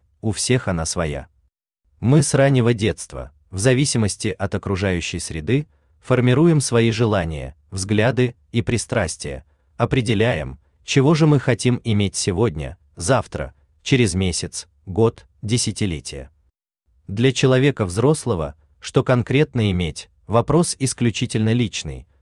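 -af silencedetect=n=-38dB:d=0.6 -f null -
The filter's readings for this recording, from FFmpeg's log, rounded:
silence_start: 1.24
silence_end: 2.02 | silence_duration: 0.78
silence_start: 16.26
silence_end: 17.09 | silence_duration: 0.83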